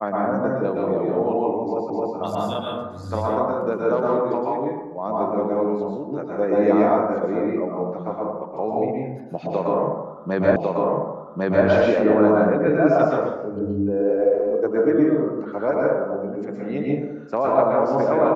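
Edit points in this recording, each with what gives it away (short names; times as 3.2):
1.9 repeat of the last 0.26 s
10.56 repeat of the last 1.1 s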